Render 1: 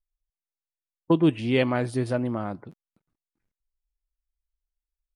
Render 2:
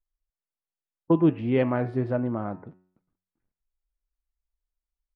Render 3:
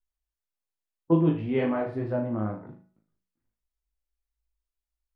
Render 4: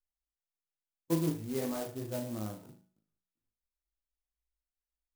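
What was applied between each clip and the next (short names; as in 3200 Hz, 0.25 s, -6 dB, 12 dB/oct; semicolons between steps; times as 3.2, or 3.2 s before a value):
LPF 1600 Hz 12 dB/oct; de-hum 91.86 Hz, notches 31
chorus voices 2, 0.91 Hz, delay 19 ms, depth 1.7 ms; on a send: flutter echo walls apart 6.4 m, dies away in 0.37 s
clock jitter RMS 0.094 ms; gain -9 dB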